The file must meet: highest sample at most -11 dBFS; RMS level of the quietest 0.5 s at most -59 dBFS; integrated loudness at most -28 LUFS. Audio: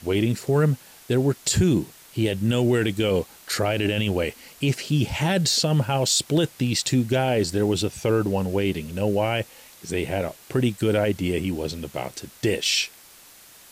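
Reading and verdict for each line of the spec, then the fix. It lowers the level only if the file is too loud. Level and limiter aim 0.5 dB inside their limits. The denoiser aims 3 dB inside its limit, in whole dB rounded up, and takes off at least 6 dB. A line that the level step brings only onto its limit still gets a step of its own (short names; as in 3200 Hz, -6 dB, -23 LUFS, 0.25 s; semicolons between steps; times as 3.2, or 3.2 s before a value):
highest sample -10.5 dBFS: fail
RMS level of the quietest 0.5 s -49 dBFS: fail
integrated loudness -23.5 LUFS: fail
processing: denoiser 8 dB, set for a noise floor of -49 dBFS; gain -5 dB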